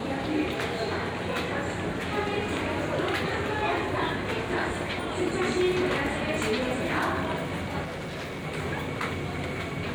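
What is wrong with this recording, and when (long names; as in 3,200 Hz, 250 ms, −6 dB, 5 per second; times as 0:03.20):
0:07.83–0:08.45: clipping −32 dBFS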